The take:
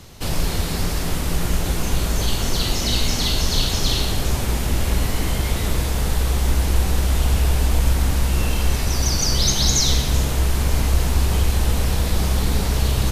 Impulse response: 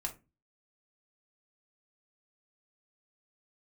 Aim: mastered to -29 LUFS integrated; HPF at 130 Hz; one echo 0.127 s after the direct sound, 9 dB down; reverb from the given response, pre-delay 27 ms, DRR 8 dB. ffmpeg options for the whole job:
-filter_complex "[0:a]highpass=130,aecho=1:1:127:0.355,asplit=2[a][b];[1:a]atrim=start_sample=2205,adelay=27[c];[b][c]afir=irnorm=-1:irlink=0,volume=-8.5dB[d];[a][d]amix=inputs=2:normalize=0,volume=-6.5dB"

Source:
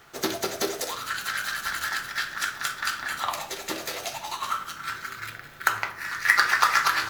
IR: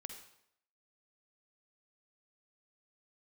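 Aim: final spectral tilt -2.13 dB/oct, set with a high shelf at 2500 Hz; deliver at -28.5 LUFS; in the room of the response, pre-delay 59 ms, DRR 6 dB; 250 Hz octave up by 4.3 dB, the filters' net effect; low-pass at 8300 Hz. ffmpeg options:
-filter_complex "[0:a]lowpass=8.3k,equalizer=f=250:t=o:g=6.5,highshelf=f=2.5k:g=-4,asplit=2[a][b];[1:a]atrim=start_sample=2205,adelay=59[c];[b][c]afir=irnorm=-1:irlink=0,volume=-2dB[d];[a][d]amix=inputs=2:normalize=0,volume=-1.5dB"

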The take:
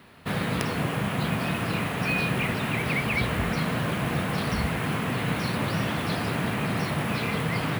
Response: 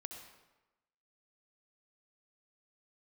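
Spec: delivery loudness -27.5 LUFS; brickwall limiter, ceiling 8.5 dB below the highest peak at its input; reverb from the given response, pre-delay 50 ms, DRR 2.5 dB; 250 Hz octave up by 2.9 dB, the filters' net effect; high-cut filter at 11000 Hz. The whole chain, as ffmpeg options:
-filter_complex "[0:a]lowpass=11k,equalizer=f=250:t=o:g=4,alimiter=limit=-19.5dB:level=0:latency=1,asplit=2[a][b];[1:a]atrim=start_sample=2205,adelay=50[c];[b][c]afir=irnorm=-1:irlink=0,volume=1dB[d];[a][d]amix=inputs=2:normalize=0,volume=-1dB"

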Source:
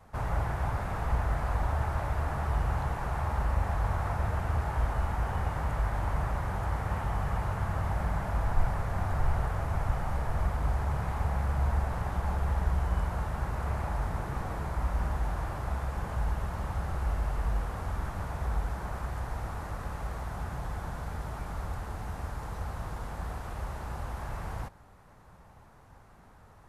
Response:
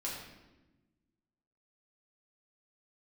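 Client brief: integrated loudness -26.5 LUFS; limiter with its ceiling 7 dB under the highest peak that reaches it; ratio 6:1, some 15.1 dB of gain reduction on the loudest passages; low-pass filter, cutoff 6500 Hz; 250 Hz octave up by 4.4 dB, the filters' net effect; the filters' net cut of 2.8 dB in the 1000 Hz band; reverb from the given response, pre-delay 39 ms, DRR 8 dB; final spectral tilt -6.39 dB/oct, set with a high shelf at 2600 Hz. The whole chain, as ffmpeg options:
-filter_complex "[0:a]lowpass=6.5k,equalizer=f=250:t=o:g=7,equalizer=f=1k:t=o:g=-5,highshelf=f=2.6k:g=6.5,acompressor=threshold=-35dB:ratio=6,alimiter=level_in=9dB:limit=-24dB:level=0:latency=1,volume=-9dB,asplit=2[a][b];[1:a]atrim=start_sample=2205,adelay=39[c];[b][c]afir=irnorm=-1:irlink=0,volume=-10dB[d];[a][d]amix=inputs=2:normalize=0,volume=16dB"

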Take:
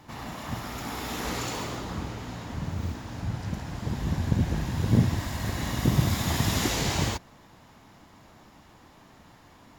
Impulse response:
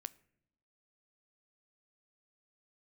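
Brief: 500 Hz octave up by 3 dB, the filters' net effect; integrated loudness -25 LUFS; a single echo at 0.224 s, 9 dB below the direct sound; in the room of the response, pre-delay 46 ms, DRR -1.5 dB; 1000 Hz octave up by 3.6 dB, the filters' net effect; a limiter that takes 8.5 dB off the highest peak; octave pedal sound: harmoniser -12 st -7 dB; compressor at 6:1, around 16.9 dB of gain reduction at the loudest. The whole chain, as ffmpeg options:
-filter_complex "[0:a]equalizer=f=500:t=o:g=3,equalizer=f=1k:t=o:g=3.5,acompressor=threshold=-36dB:ratio=6,alimiter=level_in=9dB:limit=-24dB:level=0:latency=1,volume=-9dB,aecho=1:1:224:0.355,asplit=2[a][b];[1:a]atrim=start_sample=2205,adelay=46[c];[b][c]afir=irnorm=-1:irlink=0,volume=5.5dB[d];[a][d]amix=inputs=2:normalize=0,asplit=2[e][f];[f]asetrate=22050,aresample=44100,atempo=2,volume=-7dB[g];[e][g]amix=inputs=2:normalize=0,volume=13.5dB"

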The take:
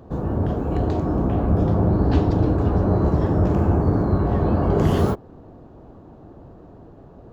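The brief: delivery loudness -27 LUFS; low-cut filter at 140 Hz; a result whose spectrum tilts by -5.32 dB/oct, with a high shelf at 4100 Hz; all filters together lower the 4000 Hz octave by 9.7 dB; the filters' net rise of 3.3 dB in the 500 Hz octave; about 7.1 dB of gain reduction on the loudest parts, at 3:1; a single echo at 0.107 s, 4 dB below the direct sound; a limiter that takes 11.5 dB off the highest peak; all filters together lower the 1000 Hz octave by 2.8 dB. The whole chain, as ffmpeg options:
-af "highpass=140,equalizer=f=500:t=o:g=6,equalizer=f=1k:t=o:g=-6.5,equalizer=f=4k:t=o:g=-8.5,highshelf=f=4.1k:g=-8.5,acompressor=threshold=-24dB:ratio=3,alimiter=level_in=1.5dB:limit=-24dB:level=0:latency=1,volume=-1.5dB,aecho=1:1:107:0.631,volume=5dB"

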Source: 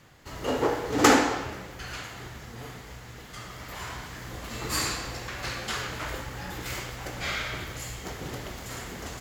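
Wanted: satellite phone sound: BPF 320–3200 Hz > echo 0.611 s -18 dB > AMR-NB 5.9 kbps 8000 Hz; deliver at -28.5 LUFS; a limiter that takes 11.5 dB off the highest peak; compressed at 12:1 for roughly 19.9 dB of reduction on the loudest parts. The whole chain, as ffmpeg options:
-af "acompressor=threshold=-35dB:ratio=12,alimiter=level_in=10dB:limit=-24dB:level=0:latency=1,volume=-10dB,highpass=320,lowpass=3.2k,aecho=1:1:611:0.126,volume=21.5dB" -ar 8000 -c:a libopencore_amrnb -b:a 5900

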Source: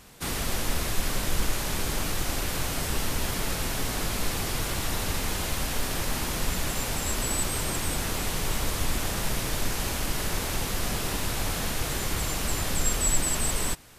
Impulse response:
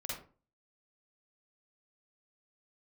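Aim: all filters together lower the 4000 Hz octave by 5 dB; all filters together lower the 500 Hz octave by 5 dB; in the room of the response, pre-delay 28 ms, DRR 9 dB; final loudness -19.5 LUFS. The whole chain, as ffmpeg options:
-filter_complex "[0:a]equalizer=f=500:t=o:g=-6.5,equalizer=f=4k:t=o:g=-6.5,asplit=2[a][b];[1:a]atrim=start_sample=2205,adelay=28[c];[b][c]afir=irnorm=-1:irlink=0,volume=-9.5dB[d];[a][d]amix=inputs=2:normalize=0,volume=10.5dB"

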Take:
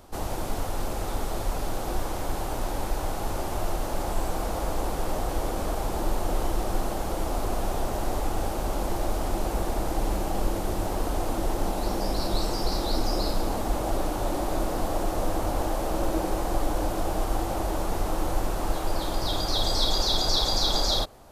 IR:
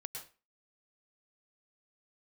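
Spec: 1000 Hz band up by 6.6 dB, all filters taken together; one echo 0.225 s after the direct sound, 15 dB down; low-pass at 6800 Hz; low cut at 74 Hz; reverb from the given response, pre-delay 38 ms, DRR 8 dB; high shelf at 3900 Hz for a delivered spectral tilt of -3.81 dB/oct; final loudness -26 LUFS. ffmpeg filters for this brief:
-filter_complex "[0:a]highpass=74,lowpass=6.8k,equalizer=f=1k:t=o:g=8.5,highshelf=f=3.9k:g=4,aecho=1:1:225:0.178,asplit=2[a][b];[1:a]atrim=start_sample=2205,adelay=38[c];[b][c]afir=irnorm=-1:irlink=0,volume=-5.5dB[d];[a][d]amix=inputs=2:normalize=0"

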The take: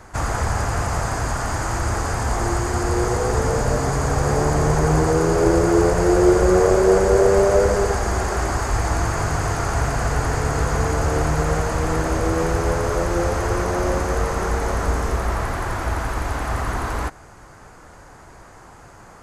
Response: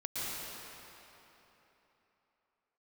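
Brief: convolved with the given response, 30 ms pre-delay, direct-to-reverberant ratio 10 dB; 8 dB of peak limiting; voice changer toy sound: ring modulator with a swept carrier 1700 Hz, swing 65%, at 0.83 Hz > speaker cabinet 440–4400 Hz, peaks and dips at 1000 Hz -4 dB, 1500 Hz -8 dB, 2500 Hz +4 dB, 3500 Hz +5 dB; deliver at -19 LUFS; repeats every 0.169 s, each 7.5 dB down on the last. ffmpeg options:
-filter_complex "[0:a]alimiter=limit=-12dB:level=0:latency=1,aecho=1:1:169|338|507|676|845:0.422|0.177|0.0744|0.0312|0.0131,asplit=2[a][b];[1:a]atrim=start_sample=2205,adelay=30[c];[b][c]afir=irnorm=-1:irlink=0,volume=-15dB[d];[a][d]amix=inputs=2:normalize=0,aeval=exprs='val(0)*sin(2*PI*1700*n/s+1700*0.65/0.83*sin(2*PI*0.83*n/s))':c=same,highpass=440,equalizer=f=1k:t=q:w=4:g=-4,equalizer=f=1.5k:t=q:w=4:g=-8,equalizer=f=2.5k:t=q:w=4:g=4,equalizer=f=3.5k:t=q:w=4:g=5,lowpass=f=4.4k:w=0.5412,lowpass=f=4.4k:w=1.3066,volume=1.5dB"

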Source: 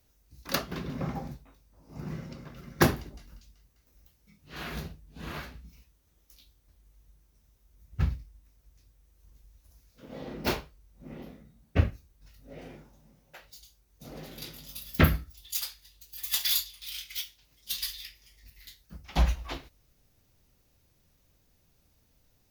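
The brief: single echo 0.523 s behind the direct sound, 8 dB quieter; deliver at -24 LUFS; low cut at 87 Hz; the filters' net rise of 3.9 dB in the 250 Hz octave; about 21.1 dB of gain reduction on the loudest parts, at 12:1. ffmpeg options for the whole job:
-af "highpass=87,equalizer=f=250:t=o:g=5.5,acompressor=threshold=-36dB:ratio=12,aecho=1:1:523:0.398,volume=19dB"

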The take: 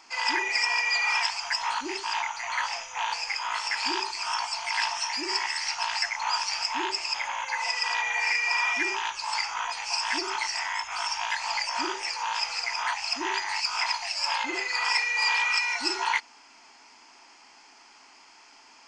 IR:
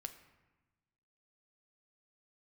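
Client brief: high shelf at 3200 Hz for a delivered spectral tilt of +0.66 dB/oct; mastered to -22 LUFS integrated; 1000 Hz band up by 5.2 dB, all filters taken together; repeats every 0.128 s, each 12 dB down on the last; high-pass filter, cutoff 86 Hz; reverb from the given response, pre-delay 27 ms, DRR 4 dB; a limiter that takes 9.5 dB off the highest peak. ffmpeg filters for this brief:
-filter_complex "[0:a]highpass=86,equalizer=f=1k:t=o:g=6.5,highshelf=f=3.2k:g=-8.5,alimiter=limit=-21dB:level=0:latency=1,aecho=1:1:128|256|384:0.251|0.0628|0.0157,asplit=2[a][b];[1:a]atrim=start_sample=2205,adelay=27[c];[b][c]afir=irnorm=-1:irlink=0,volume=-0.5dB[d];[a][d]amix=inputs=2:normalize=0,volume=6.5dB"

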